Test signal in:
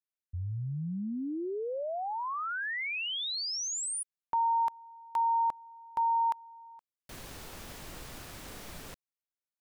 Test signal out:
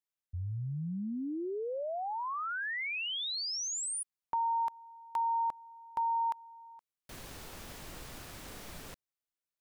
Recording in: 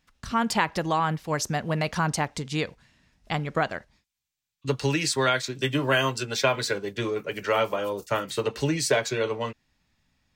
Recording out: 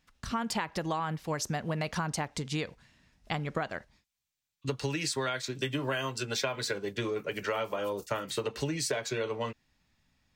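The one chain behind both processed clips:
downward compressor, threshold −27 dBFS
level −1.5 dB

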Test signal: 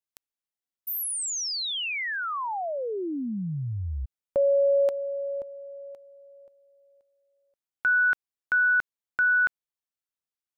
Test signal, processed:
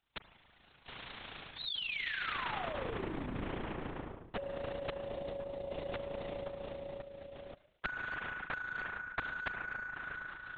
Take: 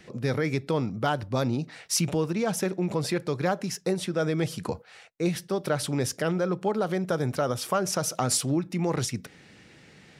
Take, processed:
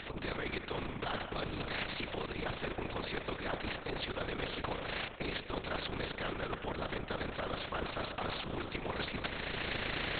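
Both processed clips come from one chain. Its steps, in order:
camcorder AGC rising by 33 dB per second, up to +20 dB
in parallel at −10.5 dB: wrap-around overflow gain 6 dB
on the sum: Chebyshev high-pass filter 200 Hz, order 6
noise that follows the level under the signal 34 dB
spring reverb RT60 3 s, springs 40/46 ms, chirp 75 ms, DRR 13 dB
linear-prediction vocoder at 8 kHz whisper
reversed playback
downward compressor 6 to 1, threshold −33 dBFS
reversed playback
amplitude modulation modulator 28 Hz, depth 35%
every bin compressed towards the loudest bin 2 to 1
level +1 dB

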